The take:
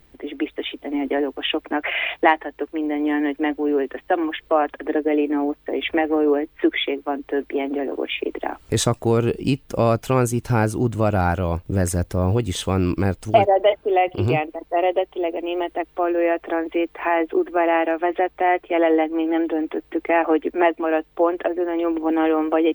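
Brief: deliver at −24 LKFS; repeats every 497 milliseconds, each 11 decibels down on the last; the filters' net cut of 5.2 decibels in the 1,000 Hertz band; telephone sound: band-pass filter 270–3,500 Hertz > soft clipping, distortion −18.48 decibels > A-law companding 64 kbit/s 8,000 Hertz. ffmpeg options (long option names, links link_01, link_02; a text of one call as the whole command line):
ffmpeg -i in.wav -af "highpass=270,lowpass=3500,equalizer=frequency=1000:width_type=o:gain=-8,aecho=1:1:497|994|1491:0.282|0.0789|0.0221,asoftclip=threshold=-13.5dB,volume=1.5dB" -ar 8000 -c:a pcm_alaw out.wav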